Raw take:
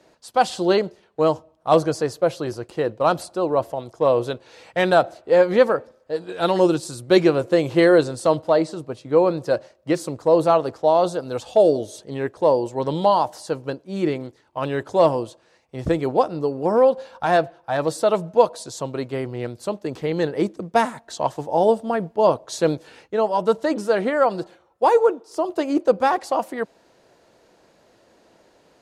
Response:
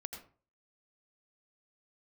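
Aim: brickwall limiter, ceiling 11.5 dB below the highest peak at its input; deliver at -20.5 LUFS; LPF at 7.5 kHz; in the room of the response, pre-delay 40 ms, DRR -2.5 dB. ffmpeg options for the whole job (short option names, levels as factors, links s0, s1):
-filter_complex "[0:a]lowpass=7500,alimiter=limit=0.188:level=0:latency=1,asplit=2[s0][s1];[1:a]atrim=start_sample=2205,adelay=40[s2];[s1][s2]afir=irnorm=-1:irlink=0,volume=1.68[s3];[s0][s3]amix=inputs=2:normalize=0,volume=1.12"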